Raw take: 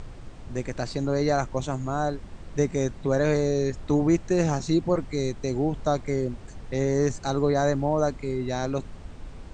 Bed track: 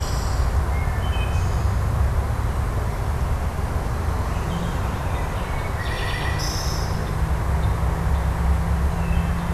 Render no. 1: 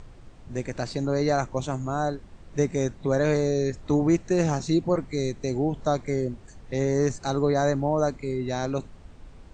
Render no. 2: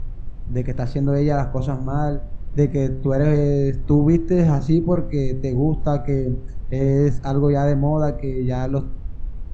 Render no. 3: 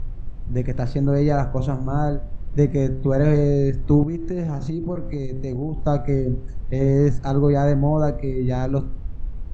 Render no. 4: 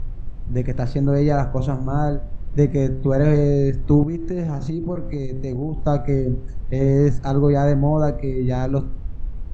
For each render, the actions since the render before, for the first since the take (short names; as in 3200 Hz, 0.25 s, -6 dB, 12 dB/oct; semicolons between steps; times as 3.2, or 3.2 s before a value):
noise print and reduce 6 dB
RIAA curve playback; de-hum 65.77 Hz, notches 29
4.03–5.86 compressor 12:1, threshold -21 dBFS
gain +1 dB